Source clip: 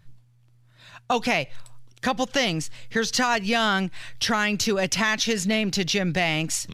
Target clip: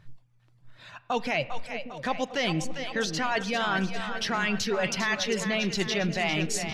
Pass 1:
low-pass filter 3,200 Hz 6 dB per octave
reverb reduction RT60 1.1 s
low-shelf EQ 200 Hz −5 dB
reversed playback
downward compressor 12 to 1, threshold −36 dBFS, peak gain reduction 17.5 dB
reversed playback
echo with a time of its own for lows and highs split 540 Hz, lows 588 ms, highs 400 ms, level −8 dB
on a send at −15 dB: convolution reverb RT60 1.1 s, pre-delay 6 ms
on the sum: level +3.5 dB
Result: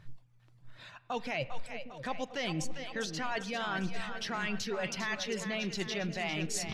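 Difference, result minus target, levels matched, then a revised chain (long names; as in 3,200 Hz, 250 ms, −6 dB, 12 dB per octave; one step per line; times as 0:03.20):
downward compressor: peak gain reduction +8 dB
low-pass filter 3,200 Hz 6 dB per octave
reverb reduction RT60 1.1 s
low-shelf EQ 200 Hz −5 dB
reversed playback
downward compressor 12 to 1, threshold −27.5 dBFS, peak gain reduction 9.5 dB
reversed playback
echo with a time of its own for lows and highs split 540 Hz, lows 588 ms, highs 400 ms, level −8 dB
on a send at −15 dB: convolution reverb RT60 1.1 s, pre-delay 6 ms
on the sum: level +3.5 dB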